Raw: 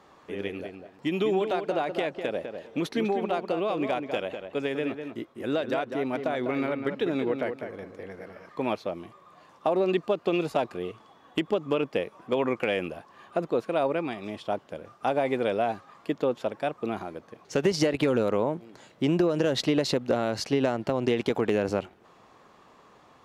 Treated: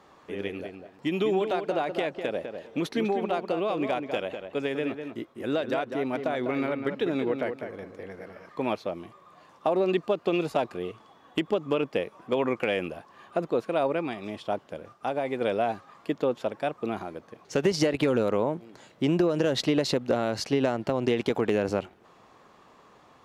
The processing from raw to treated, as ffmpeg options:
ffmpeg -i in.wav -filter_complex "[0:a]asplit=3[link_01][link_02][link_03];[link_01]atrim=end=14.932[link_04];[link_02]atrim=start=14.928:end=15.412,asetpts=PTS-STARTPTS,volume=-3.5dB[link_05];[link_03]atrim=start=15.408[link_06];[link_04][link_05]acrossfade=duration=0.004:curve1=hsin:curve2=hsin[link_07];[link_07][link_06]acrossfade=duration=0.004:curve1=hsin:curve2=hsin" out.wav

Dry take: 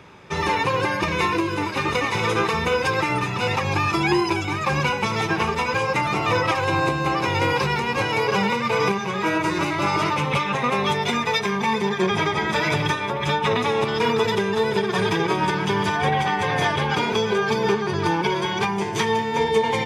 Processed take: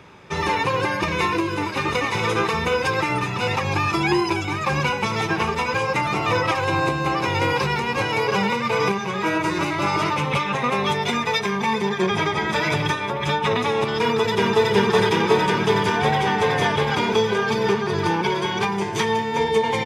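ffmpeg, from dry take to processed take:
ffmpeg -i in.wav -filter_complex "[0:a]asplit=2[link_01][link_02];[link_02]afade=type=in:start_time=14.01:duration=0.01,afade=type=out:start_time=14.69:duration=0.01,aecho=0:1:370|740|1110|1480|1850|2220|2590|2960|3330|3700|4070|4440:0.891251|0.757563|0.643929|0.547339|0.465239|0.395453|0.336135|0.285715|0.242857|0.206429|0.175464|0.149145[link_03];[link_01][link_03]amix=inputs=2:normalize=0" out.wav

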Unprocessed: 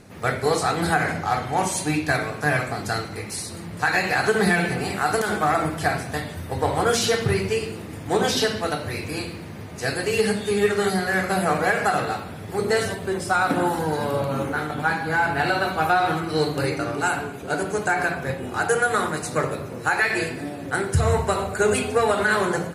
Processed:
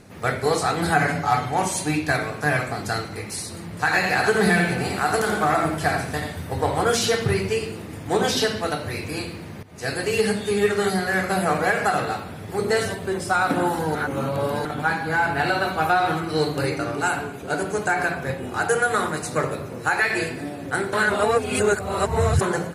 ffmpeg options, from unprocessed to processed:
ffmpeg -i in.wav -filter_complex "[0:a]asettb=1/sr,asplit=3[link_01][link_02][link_03];[link_01]atrim=end=0.944[link_04];[link_02]atrim=start=0.94:end=1.49,asetpts=PTS-STARTPTS,afade=type=in:duration=0.004:curve=qsin,afade=type=out:start_time=0.546:duration=0.004:curve=qsin,aecho=1:1:7:0.71,atrim=end_sample=24255[link_05];[link_03]atrim=start=1.486[link_06];[link_04][link_05]acrossfade=duration=0.004:curve1=hsin:curve2=qsin[link_07];[link_07][link_06]acrossfade=duration=0.004:curve1=qsin:curve2=hsin,asettb=1/sr,asplit=3[link_08][link_09][link_10];[link_08]atrim=end=3.764[link_11];[link_09]atrim=start=3.76:end=6.61,asetpts=PTS-STARTPTS,afade=type=in:duration=0.004:curve=qsin,afade=type=out:start_time=2.846:duration=0.004:curve=qsin,aecho=1:1:86:0.473,atrim=end_sample=125685[link_12];[link_10]atrim=start=6.606[link_13];[link_11][link_12]acrossfade=duration=0.004:curve1=hsin:curve2=qsin[link_14];[link_14][link_13]acrossfade=duration=0.004:curve1=qsin:curve2=hsin,asplit=6[link_15][link_16][link_17][link_18][link_19][link_20];[link_15]atrim=end=9.63,asetpts=PTS-STARTPTS,afade=type=out:start_time=9.626:duration=0.004:curve=hsin:silence=0.149624[link_21];[link_16]atrim=start=9.63:end=13.952,asetpts=PTS-STARTPTS,afade=type=in:duration=0.43:curve=qsin:silence=0.149624[link_22];[link_17]atrim=start=13.948:end=14.652,asetpts=PTS-STARTPTS,areverse[link_23];[link_18]atrim=start=14.648:end=20.932[link_24];[link_19]atrim=start=20.928:end=22.412,asetpts=PTS-STARTPTS,areverse[link_25];[link_20]atrim=start=22.408[link_26];[link_21][link_22]concat=n=2:v=0:a=1[link_27];[link_27][link_23]acrossfade=duration=0.004:curve1=hsin:curve2=hsin[link_28];[link_28][link_24]acrossfade=duration=0.004:curve1=hsin:curve2=hsin[link_29];[link_29][link_25]acrossfade=duration=0.004:curve1=hsin:curve2=hsin[link_30];[link_30][link_26]acrossfade=duration=0.004:curve1=hsin:curve2=hsin" out.wav

